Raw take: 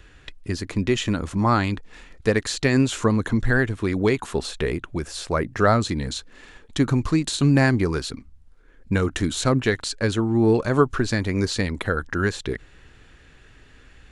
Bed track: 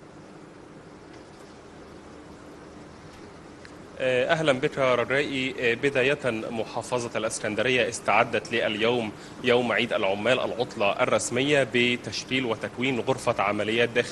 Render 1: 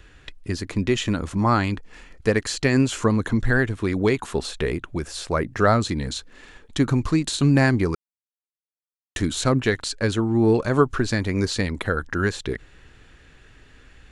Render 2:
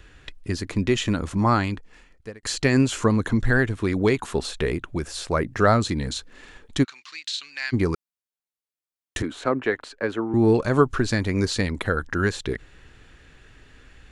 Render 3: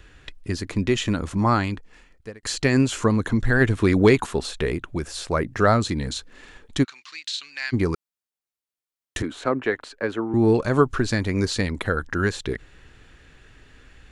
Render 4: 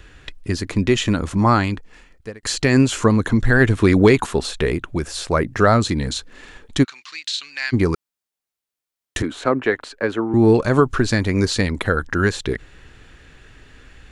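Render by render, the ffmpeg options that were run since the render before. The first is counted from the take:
-filter_complex "[0:a]asettb=1/sr,asplit=3[a][b][c];[a]atrim=end=1.434[d];[b]atrim=start=1.43:end=3.01,asetpts=PTS-STARTPTS,afade=t=in:d=0.004:c=qsin,afade=t=out:st=1.576:d=0.004:c=qsin,bandreject=f=3.7k:w=12[e];[c]atrim=start=3.006[f];[d][e]acrossfade=d=0.004:c1=hsin:c2=qsin[g];[g][f]acrossfade=d=0.004:c1=qsin:c2=hsin,asplit=3[h][i][j];[h]atrim=end=7.95,asetpts=PTS-STARTPTS,afade=t=out:st=7.946:d=0.004:c=hsin[k];[i]atrim=start=7.95:end=9.16,asetpts=PTS-STARTPTS,volume=0[l];[j]atrim=start=9.16,asetpts=PTS-STARTPTS,afade=t=in:d=0.004:c=hsin[m];[k][l][m]concat=n=3:v=0:a=1"
-filter_complex "[0:a]asplit=3[a][b][c];[a]afade=t=out:st=6.83:d=0.02[d];[b]asuperpass=centerf=3400:order=4:qfactor=0.96,afade=t=in:st=6.83:d=0.02,afade=t=out:st=7.72:d=0.02[e];[c]afade=t=in:st=7.72:d=0.02[f];[d][e][f]amix=inputs=3:normalize=0,asettb=1/sr,asplit=3[g][h][i];[g]atrim=end=9.224[j];[h]atrim=start=9.22:end=10.34,asetpts=PTS-STARTPTS,afade=t=in:d=0.004:c=qsin,afade=t=out:st=1.116:d=0.004:c=qsin,acrossover=split=260 2500:gain=0.141 1 0.126[k][l][m];[k][l][m]amix=inputs=3:normalize=0[n];[i]atrim=start=10.336[o];[j][n]acrossfade=d=0.004:c1=hsin:c2=qsin[p];[p][o]acrossfade=d=0.004:c1=qsin:c2=hsin,asplit=2[q][r];[q]atrim=end=2.43,asetpts=PTS-STARTPTS,afade=t=out:st=1.47:d=0.96[s];[r]atrim=start=2.43,asetpts=PTS-STARTPTS,afade=t=in:d=0.004:c=hsin[t];[s][t]concat=n=2:v=0:a=1"
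-filter_complex "[0:a]asplit=3[a][b][c];[a]afade=t=out:st=3.6:d=0.02[d];[b]acontrast=37,afade=t=in:st=3.6:d=0.02,afade=t=out:st=4.25:d=0.02[e];[c]afade=t=in:st=4.25:d=0.02[f];[d][e][f]amix=inputs=3:normalize=0"
-af "volume=4.5dB,alimiter=limit=-3dB:level=0:latency=1"

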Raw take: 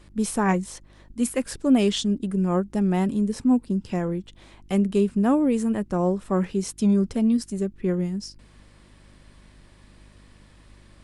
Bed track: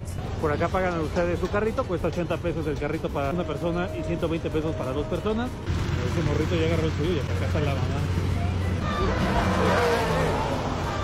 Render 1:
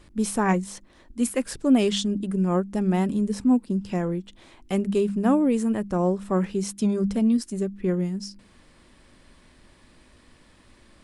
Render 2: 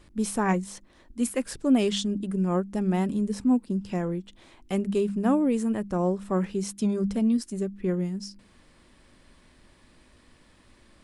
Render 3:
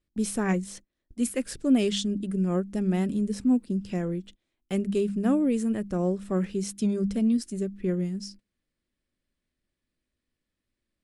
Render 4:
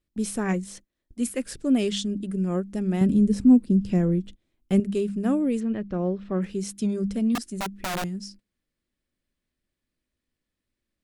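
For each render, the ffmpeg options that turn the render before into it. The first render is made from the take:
-af "bandreject=f=50:t=h:w=4,bandreject=f=100:t=h:w=4,bandreject=f=150:t=h:w=4,bandreject=f=200:t=h:w=4"
-af "volume=-2.5dB"
-af "equalizer=f=940:w=1.8:g=-9.5,agate=range=-26dB:threshold=-45dB:ratio=16:detection=peak"
-filter_complex "[0:a]asettb=1/sr,asplit=3[a][b][c];[a]atrim=end=3.014[d];[b]atrim=start=3.01:end=4.8,asetpts=PTS-STARTPTS,afade=t=in:d=0.004:c=qsin,afade=t=out:st=1.786:d=0.004:c=qsin,lowshelf=f=370:g=10.5[e];[c]atrim=start=4.796[f];[d][e]acrossfade=d=0.004:c1=hsin:c2=qsin[g];[g][f]acrossfade=d=0.004:c1=qsin:c2=hsin,asplit=3[h][i][j];[h]afade=t=out:st=5.59:d=0.02[k];[i]lowpass=f=4.2k:w=0.5412,lowpass=f=4.2k:w=1.3066,afade=t=in:st=5.59:d=0.02,afade=t=out:st=6.41:d=0.02[l];[j]afade=t=in:st=6.41:d=0.02[m];[k][l][m]amix=inputs=3:normalize=0,asettb=1/sr,asplit=3[n][o][p];[n]atrim=end=7.354[q];[o]atrim=start=7.35:end=8.04,asetpts=PTS-STARTPTS,afade=t=in:d=0.004:c=qsin,afade=t=out:st=0.686:d=0.004:c=qsin,aeval=exprs='(mod(15.8*val(0)+1,2)-1)/15.8':c=same[r];[p]atrim=start=8.036[s];[q][r]acrossfade=d=0.004:c1=hsin:c2=qsin[t];[t][s]acrossfade=d=0.004:c1=qsin:c2=hsin"

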